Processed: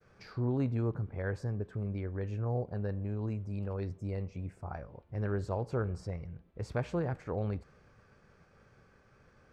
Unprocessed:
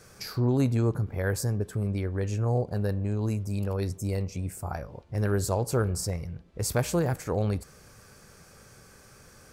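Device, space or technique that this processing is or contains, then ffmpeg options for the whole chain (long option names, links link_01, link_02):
hearing-loss simulation: -af "lowpass=2600,agate=range=-33dB:threshold=-52dB:ratio=3:detection=peak,volume=-7dB"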